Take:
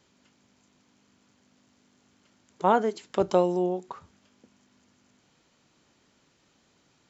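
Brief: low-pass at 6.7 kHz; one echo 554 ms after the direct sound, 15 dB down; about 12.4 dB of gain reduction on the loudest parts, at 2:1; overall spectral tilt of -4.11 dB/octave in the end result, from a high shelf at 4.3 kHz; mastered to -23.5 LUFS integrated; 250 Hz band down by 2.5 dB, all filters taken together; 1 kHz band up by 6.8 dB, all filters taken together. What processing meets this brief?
low-pass 6.7 kHz; peaking EQ 250 Hz -5.5 dB; peaking EQ 1 kHz +8.5 dB; treble shelf 4.3 kHz +6.5 dB; compression 2:1, threshold -34 dBFS; delay 554 ms -15 dB; trim +10 dB

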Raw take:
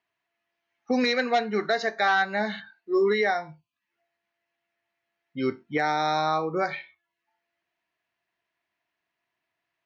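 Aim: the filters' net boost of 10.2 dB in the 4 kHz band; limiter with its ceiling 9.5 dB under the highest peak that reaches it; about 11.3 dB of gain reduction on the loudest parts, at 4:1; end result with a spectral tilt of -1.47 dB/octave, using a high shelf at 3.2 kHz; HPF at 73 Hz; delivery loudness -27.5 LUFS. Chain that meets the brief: high-pass 73 Hz; treble shelf 3.2 kHz +7.5 dB; peaking EQ 4 kHz +6 dB; compression 4:1, threshold -30 dBFS; trim +7.5 dB; peak limiter -17.5 dBFS

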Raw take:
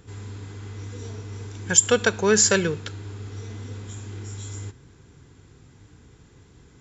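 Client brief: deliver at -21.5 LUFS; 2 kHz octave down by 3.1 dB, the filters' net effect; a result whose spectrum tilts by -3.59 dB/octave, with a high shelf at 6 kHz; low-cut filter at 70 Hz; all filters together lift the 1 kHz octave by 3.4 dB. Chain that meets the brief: high-pass 70 Hz; peaking EQ 1 kHz +7 dB; peaking EQ 2 kHz -7.5 dB; treble shelf 6 kHz -7 dB; trim +3.5 dB

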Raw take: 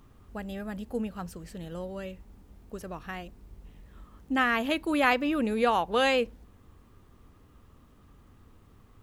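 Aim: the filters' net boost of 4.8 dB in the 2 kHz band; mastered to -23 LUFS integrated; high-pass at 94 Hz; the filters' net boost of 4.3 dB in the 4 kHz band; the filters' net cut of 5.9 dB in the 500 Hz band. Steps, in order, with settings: high-pass 94 Hz; peaking EQ 500 Hz -7 dB; peaking EQ 2 kHz +5.5 dB; peaking EQ 4 kHz +3.5 dB; trim +4 dB

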